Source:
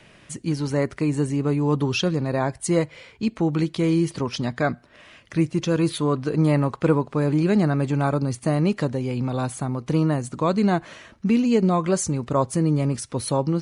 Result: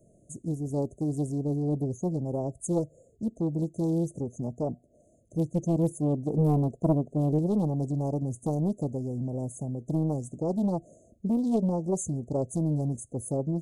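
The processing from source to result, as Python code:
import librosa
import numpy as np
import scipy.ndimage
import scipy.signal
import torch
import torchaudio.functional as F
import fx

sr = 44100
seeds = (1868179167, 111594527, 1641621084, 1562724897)

y = fx.brickwall_bandstop(x, sr, low_hz=720.0, high_hz=6200.0)
y = fx.dynamic_eq(y, sr, hz=220.0, q=1.1, threshold_db=-29.0, ratio=4.0, max_db=5, at=(5.54, 7.39))
y = fx.doppler_dist(y, sr, depth_ms=0.78)
y = F.gain(torch.from_numpy(y), -6.5).numpy()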